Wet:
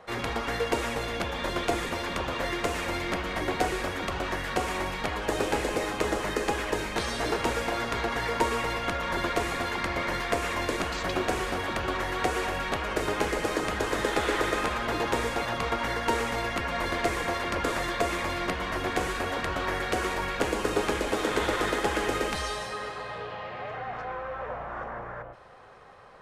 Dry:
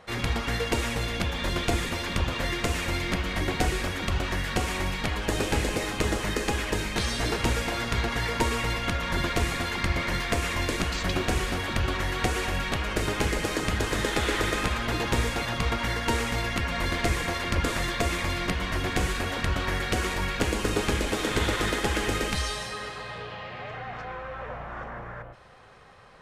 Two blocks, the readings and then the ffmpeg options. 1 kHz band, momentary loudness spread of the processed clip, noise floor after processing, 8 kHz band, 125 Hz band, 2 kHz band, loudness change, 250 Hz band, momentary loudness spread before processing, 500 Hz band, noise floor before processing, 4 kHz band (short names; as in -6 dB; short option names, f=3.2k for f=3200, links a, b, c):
+2.0 dB, 8 LU, -38 dBFS, -4.0 dB, -8.0 dB, -1.0 dB, -1.5 dB, -2.0 dB, 9 LU, +2.0 dB, -39 dBFS, -3.5 dB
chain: -filter_complex "[0:a]acrossover=split=310|1500[a][b][c];[a]asoftclip=type=tanh:threshold=-30.5dB[d];[b]acontrast=88[e];[d][e][c]amix=inputs=3:normalize=0,volume=-4dB"